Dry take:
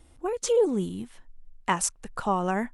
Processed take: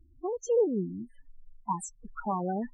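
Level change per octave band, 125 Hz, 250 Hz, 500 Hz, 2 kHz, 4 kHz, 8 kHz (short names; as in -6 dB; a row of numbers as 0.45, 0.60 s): -3.5 dB, -3.5 dB, -3.5 dB, -16.5 dB, under -20 dB, -12.5 dB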